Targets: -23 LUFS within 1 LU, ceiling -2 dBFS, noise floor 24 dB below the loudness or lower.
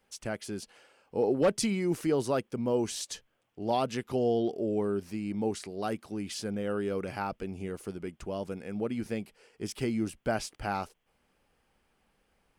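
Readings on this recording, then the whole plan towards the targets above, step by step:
loudness -32.5 LUFS; peak level -18.0 dBFS; loudness target -23.0 LUFS
-> trim +9.5 dB

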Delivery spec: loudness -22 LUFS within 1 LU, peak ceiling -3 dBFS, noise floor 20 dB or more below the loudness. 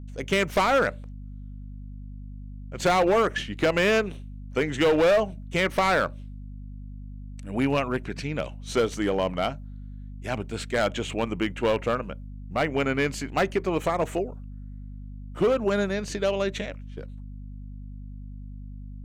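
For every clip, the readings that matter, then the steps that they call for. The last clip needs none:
clipped samples 1.8%; clipping level -16.5 dBFS; hum 50 Hz; highest harmonic 250 Hz; hum level -36 dBFS; loudness -25.5 LUFS; peak level -16.5 dBFS; loudness target -22.0 LUFS
-> clip repair -16.5 dBFS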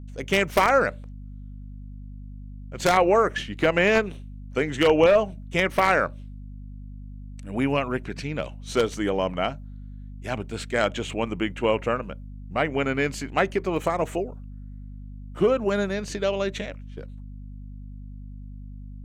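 clipped samples 0.0%; hum 50 Hz; highest harmonic 250 Hz; hum level -36 dBFS
-> hum notches 50/100/150/200/250 Hz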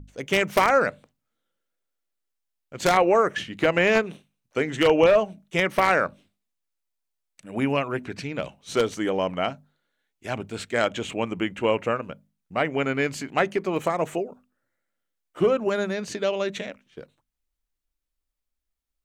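hum not found; loudness -24.0 LUFS; peak level -7.0 dBFS; loudness target -22.0 LUFS
-> trim +2 dB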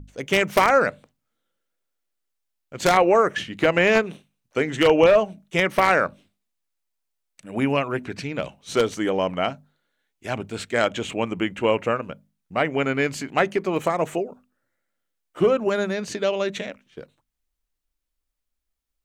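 loudness -22.0 LUFS; peak level -5.0 dBFS; noise floor -79 dBFS

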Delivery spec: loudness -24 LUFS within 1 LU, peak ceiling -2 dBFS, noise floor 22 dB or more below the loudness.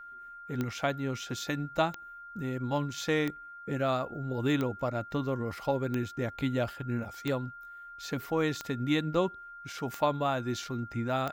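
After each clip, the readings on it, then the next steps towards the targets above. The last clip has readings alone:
clicks found 9; steady tone 1.4 kHz; tone level -44 dBFS; loudness -32.5 LUFS; peak level -14.0 dBFS; loudness target -24.0 LUFS
-> de-click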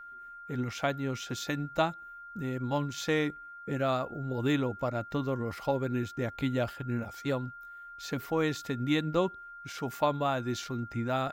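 clicks found 0; steady tone 1.4 kHz; tone level -44 dBFS
-> band-stop 1.4 kHz, Q 30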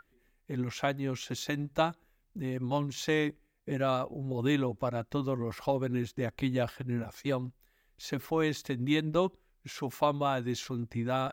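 steady tone not found; loudness -32.5 LUFS; peak level -14.0 dBFS; loudness target -24.0 LUFS
-> trim +8.5 dB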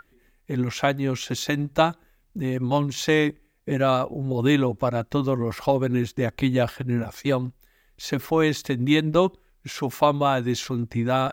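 loudness -24.0 LUFS; peak level -5.5 dBFS; noise floor -63 dBFS

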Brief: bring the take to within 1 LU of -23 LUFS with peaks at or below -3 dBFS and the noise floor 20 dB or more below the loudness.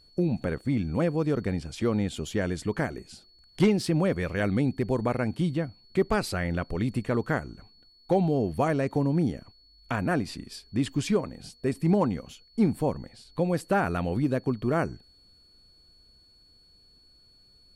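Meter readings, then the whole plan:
steady tone 4.4 kHz; tone level -57 dBFS; loudness -28.0 LUFS; peak level -13.0 dBFS; loudness target -23.0 LUFS
-> band-stop 4.4 kHz, Q 30; trim +5 dB

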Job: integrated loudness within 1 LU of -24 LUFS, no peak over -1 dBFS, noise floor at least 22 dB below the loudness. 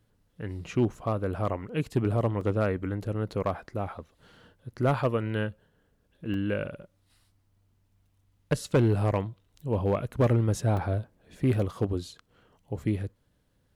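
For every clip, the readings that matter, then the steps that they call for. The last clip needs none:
clipped samples 0.4%; clipping level -16.5 dBFS; dropouts 3; longest dropout 2.3 ms; loudness -29.0 LUFS; peak level -16.5 dBFS; loudness target -24.0 LUFS
-> clip repair -16.5 dBFS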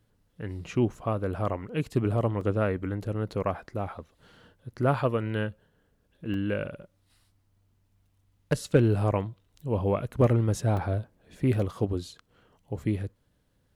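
clipped samples 0.0%; dropouts 3; longest dropout 2.3 ms
-> interpolate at 2.41/6.34/10.77 s, 2.3 ms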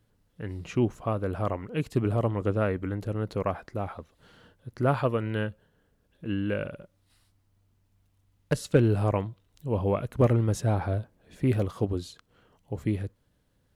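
dropouts 0; loudness -29.0 LUFS; peak level -8.5 dBFS; loudness target -24.0 LUFS
-> trim +5 dB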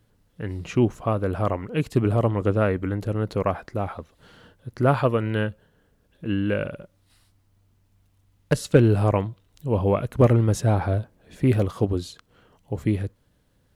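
loudness -24.0 LUFS; peak level -3.0 dBFS; noise floor -65 dBFS

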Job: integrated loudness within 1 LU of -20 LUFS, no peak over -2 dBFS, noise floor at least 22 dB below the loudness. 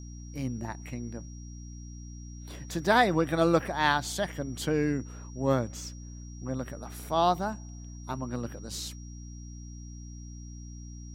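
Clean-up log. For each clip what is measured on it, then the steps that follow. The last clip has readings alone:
hum 60 Hz; highest harmonic 300 Hz; hum level -40 dBFS; steady tone 5.7 kHz; tone level -53 dBFS; loudness -30.0 LUFS; peak level -9.5 dBFS; loudness target -20.0 LUFS
-> hum notches 60/120/180/240/300 Hz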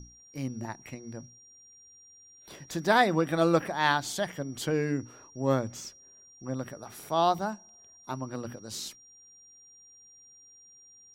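hum not found; steady tone 5.7 kHz; tone level -53 dBFS
-> band-stop 5.7 kHz, Q 30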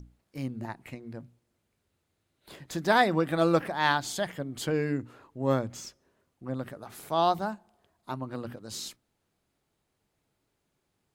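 steady tone not found; loudness -29.5 LUFS; peak level -9.5 dBFS; loudness target -20.0 LUFS
-> trim +9.5 dB; peak limiter -2 dBFS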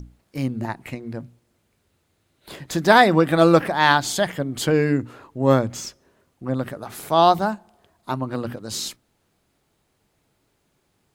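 loudness -20.5 LUFS; peak level -2.0 dBFS; noise floor -69 dBFS

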